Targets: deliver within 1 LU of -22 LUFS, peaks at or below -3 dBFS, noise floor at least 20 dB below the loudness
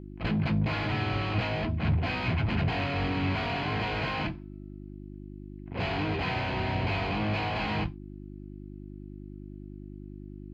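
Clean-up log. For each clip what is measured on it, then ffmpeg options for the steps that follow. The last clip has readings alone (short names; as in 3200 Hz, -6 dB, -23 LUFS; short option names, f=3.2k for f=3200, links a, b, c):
hum 50 Hz; harmonics up to 350 Hz; hum level -41 dBFS; loudness -30.0 LUFS; peak -16.5 dBFS; loudness target -22.0 LUFS
-> -af "bandreject=f=50:t=h:w=4,bandreject=f=100:t=h:w=4,bandreject=f=150:t=h:w=4,bandreject=f=200:t=h:w=4,bandreject=f=250:t=h:w=4,bandreject=f=300:t=h:w=4,bandreject=f=350:t=h:w=4"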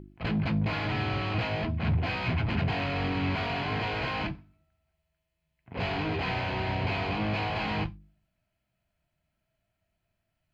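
hum none; loudness -30.0 LUFS; peak -17.0 dBFS; loudness target -22.0 LUFS
-> -af "volume=8dB"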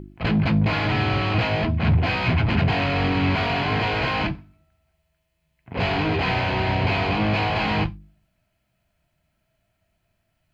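loudness -22.0 LUFS; peak -9.0 dBFS; noise floor -73 dBFS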